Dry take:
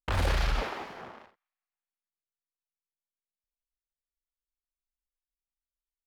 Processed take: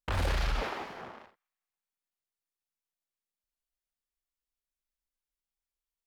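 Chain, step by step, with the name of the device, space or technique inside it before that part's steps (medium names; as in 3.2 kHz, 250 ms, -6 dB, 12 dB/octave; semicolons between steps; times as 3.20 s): clipper into limiter (hard clipper -20.5 dBFS, distortion -24 dB; peak limiter -23 dBFS, peak gain reduction 2.5 dB)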